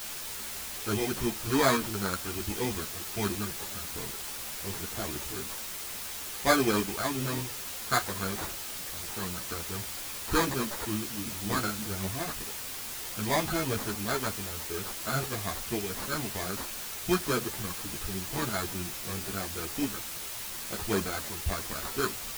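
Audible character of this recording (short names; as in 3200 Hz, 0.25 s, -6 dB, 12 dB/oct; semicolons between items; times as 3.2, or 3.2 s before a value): aliases and images of a low sample rate 2800 Hz, jitter 0%; tremolo saw up 0.57 Hz, depth 35%; a quantiser's noise floor 6-bit, dither triangular; a shimmering, thickened sound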